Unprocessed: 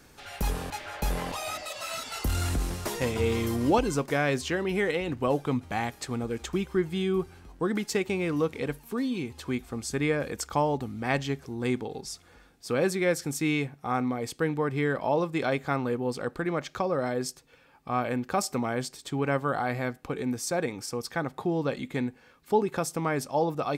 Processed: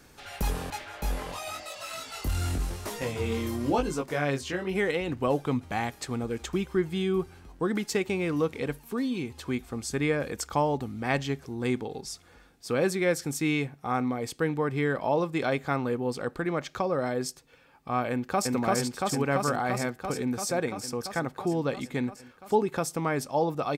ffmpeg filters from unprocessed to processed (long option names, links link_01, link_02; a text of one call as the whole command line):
ffmpeg -i in.wav -filter_complex "[0:a]asplit=3[link_01][link_02][link_03];[link_01]afade=type=out:start_time=0.83:duration=0.02[link_04];[link_02]flanger=delay=18.5:depth=4.1:speed=1,afade=type=in:start_time=0.83:duration=0.02,afade=type=out:start_time=4.74:duration=0.02[link_05];[link_03]afade=type=in:start_time=4.74:duration=0.02[link_06];[link_04][link_05][link_06]amix=inputs=3:normalize=0,asplit=2[link_07][link_08];[link_08]afade=type=in:start_time=18.11:duration=0.01,afade=type=out:start_time=18.53:duration=0.01,aecho=0:1:340|680|1020|1360|1700|2040|2380|2720|3060|3400|3740|4080:0.944061|0.755249|0.604199|0.483359|0.386687|0.30935|0.24748|0.197984|0.158387|0.12671|0.101368|0.0810942[link_09];[link_07][link_09]amix=inputs=2:normalize=0" out.wav